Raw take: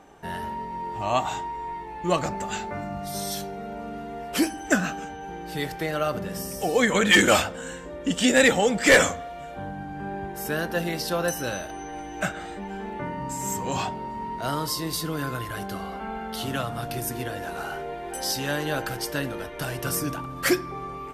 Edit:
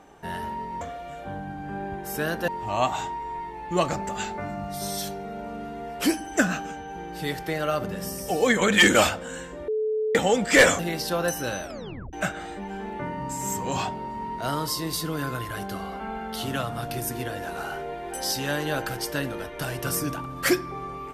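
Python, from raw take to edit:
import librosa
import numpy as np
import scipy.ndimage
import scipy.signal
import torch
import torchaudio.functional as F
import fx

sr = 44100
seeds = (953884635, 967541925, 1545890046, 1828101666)

y = fx.edit(x, sr, fx.bleep(start_s=8.01, length_s=0.47, hz=433.0, db=-22.5),
    fx.move(start_s=9.12, length_s=1.67, to_s=0.81),
    fx.tape_stop(start_s=11.63, length_s=0.5), tone=tone)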